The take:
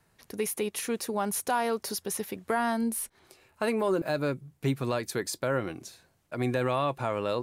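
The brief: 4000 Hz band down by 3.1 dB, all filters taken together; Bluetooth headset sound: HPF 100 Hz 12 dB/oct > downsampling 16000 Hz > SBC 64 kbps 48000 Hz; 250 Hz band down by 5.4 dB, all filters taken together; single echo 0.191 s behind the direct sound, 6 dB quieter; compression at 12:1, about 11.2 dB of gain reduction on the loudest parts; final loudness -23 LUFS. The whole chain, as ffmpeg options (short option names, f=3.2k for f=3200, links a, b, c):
-af "equalizer=f=250:t=o:g=-6.5,equalizer=f=4k:t=o:g=-4,acompressor=threshold=-36dB:ratio=12,highpass=100,aecho=1:1:191:0.501,aresample=16000,aresample=44100,volume=18.5dB" -ar 48000 -c:a sbc -b:a 64k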